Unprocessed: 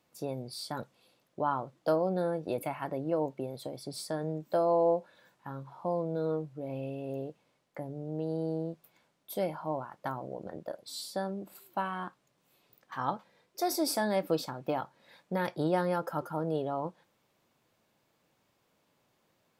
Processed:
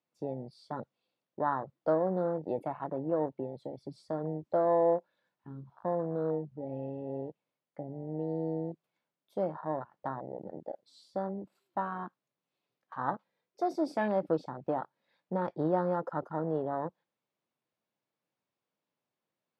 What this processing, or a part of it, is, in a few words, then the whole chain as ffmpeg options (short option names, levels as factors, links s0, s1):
over-cleaned archive recording: -af "highpass=120,lowpass=5600,afwtdn=0.0158"